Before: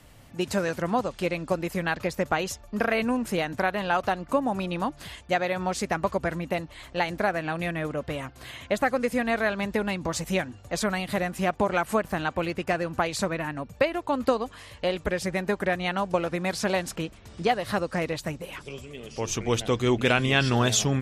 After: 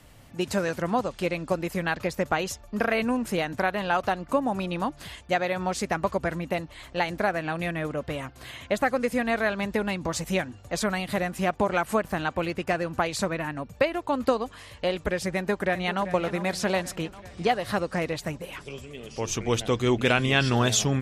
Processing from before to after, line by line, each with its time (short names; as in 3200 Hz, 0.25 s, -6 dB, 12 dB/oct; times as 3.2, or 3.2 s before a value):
15.35–16.05 echo throw 0.39 s, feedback 65%, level -12.5 dB